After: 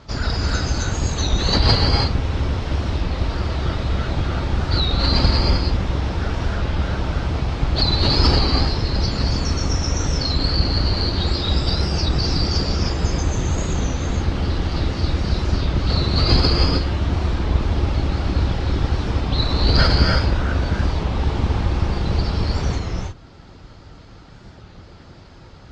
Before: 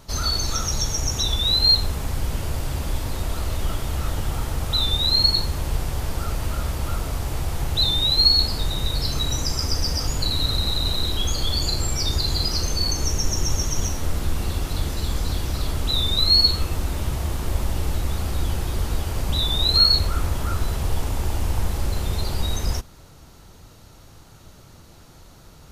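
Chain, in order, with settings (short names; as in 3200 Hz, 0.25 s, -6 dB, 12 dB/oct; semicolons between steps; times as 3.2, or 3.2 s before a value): octaver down 2 oct, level +2 dB; LPF 4300 Hz 24 dB/oct; reverb removal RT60 0.65 s; HPF 42 Hz; formant shift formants +2 st; non-linear reverb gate 0.34 s rising, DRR 0 dB; record warp 33 1/3 rpm, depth 100 cents; gain +3.5 dB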